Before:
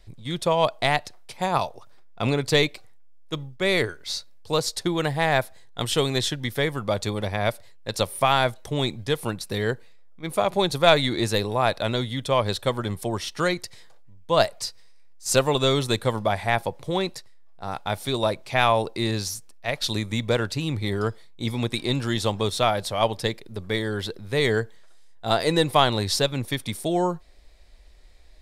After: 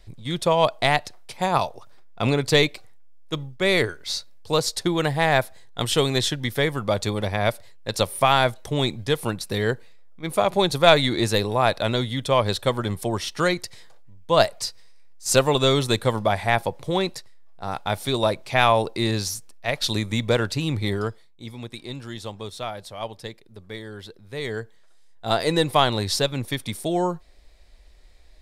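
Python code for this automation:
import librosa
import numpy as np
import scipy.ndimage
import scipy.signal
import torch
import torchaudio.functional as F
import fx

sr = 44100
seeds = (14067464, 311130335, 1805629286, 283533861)

y = fx.gain(x, sr, db=fx.line((20.89, 2.0), (21.44, -10.0), (24.24, -10.0), (25.34, 0.0)))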